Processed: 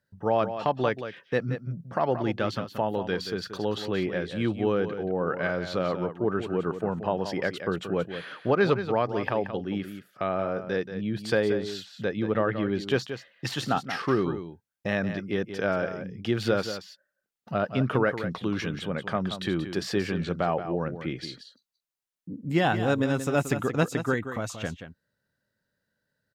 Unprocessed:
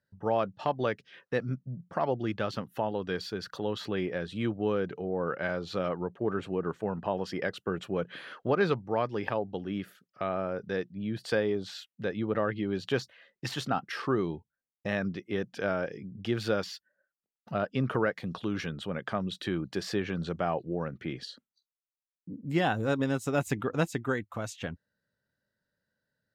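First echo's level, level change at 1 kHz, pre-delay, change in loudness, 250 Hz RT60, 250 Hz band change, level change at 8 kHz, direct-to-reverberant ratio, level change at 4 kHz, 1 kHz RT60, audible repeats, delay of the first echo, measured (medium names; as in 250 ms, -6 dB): -10.0 dB, +4.0 dB, no reverb, +4.0 dB, no reverb, +4.0 dB, +4.0 dB, no reverb, +4.0 dB, no reverb, 1, 179 ms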